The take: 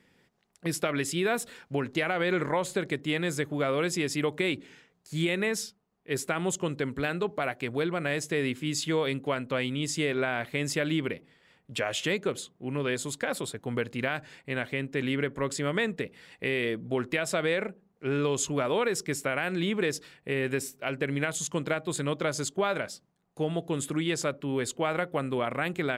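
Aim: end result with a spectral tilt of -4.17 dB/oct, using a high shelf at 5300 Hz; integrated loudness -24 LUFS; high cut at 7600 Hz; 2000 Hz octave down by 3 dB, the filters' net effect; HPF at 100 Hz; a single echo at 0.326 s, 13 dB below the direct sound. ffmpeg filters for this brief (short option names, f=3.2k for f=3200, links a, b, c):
-af "highpass=100,lowpass=7.6k,equalizer=f=2k:t=o:g=-4.5,highshelf=f=5.3k:g=5.5,aecho=1:1:326:0.224,volume=6.5dB"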